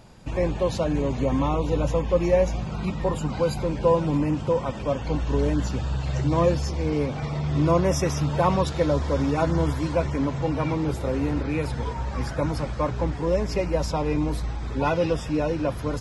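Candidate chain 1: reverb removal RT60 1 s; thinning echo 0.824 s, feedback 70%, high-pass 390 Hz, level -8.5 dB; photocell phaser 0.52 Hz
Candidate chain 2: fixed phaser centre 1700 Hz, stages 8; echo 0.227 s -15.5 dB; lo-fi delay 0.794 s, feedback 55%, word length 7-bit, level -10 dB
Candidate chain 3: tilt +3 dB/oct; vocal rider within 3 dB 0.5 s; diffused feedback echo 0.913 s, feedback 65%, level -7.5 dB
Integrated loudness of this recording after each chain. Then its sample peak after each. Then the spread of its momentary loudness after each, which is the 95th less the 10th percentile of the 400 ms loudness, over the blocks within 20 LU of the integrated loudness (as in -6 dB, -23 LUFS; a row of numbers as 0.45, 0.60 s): -29.5, -27.5, -27.0 LUFS; -10.5, -10.0, -12.0 dBFS; 9, 5, 3 LU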